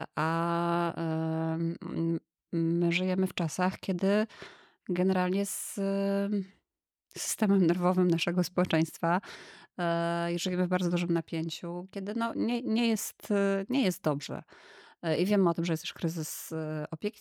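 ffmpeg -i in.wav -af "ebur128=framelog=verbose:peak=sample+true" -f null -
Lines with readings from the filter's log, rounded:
Integrated loudness:
  I:         -30.2 LUFS
  Threshold: -40.6 LUFS
Loudness range:
  LRA:         2.6 LU
  Threshold: -50.5 LUFS
  LRA low:   -31.6 LUFS
  LRA high:  -29.1 LUFS
Sample peak:
  Peak:      -14.1 dBFS
True peak:
  Peak:      -14.1 dBFS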